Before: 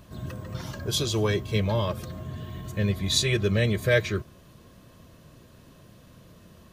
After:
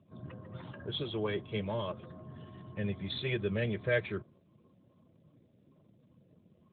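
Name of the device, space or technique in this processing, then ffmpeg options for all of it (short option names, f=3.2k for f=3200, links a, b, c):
mobile call with aggressive noise cancelling: -filter_complex "[0:a]asettb=1/sr,asplit=3[a][b][c];[a]atrim=end=1.034[d];[b]atrim=start=1.03:end=2.67,asetpts=PTS-STARTPTS,afade=t=in:d=0.004:c=qsin,afade=t=out:st=1.636:d=0.004:c=qsin,equalizer=f=100:w=1.1:g=-2.5[e];[c]atrim=start=2.666[f];[d][e]acrossfade=d=0.004:c1=hsin:c2=qsin[g];[g][f]acrossfade=d=0.004:c1=qsin:c2=hsin,highpass=f=120:p=1,afftdn=nr=36:nf=-50,volume=-7dB" -ar 8000 -c:a libopencore_amrnb -b:a 12200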